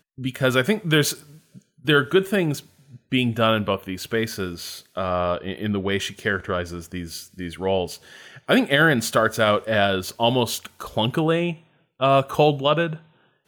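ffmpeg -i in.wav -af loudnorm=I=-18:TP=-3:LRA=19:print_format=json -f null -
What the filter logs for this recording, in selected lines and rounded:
"input_i" : "-22.0",
"input_tp" : "-6.4",
"input_lra" : "4.7",
"input_thresh" : "-32.8",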